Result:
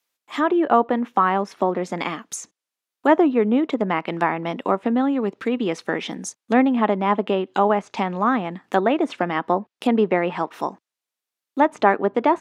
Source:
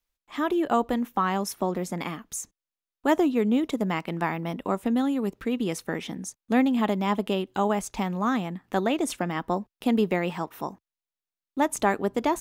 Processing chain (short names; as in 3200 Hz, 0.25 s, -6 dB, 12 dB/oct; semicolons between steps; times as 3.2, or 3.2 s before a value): Bessel high-pass 300 Hz, order 2; treble ducked by the level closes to 2000 Hz, closed at -25 dBFS; gain +8 dB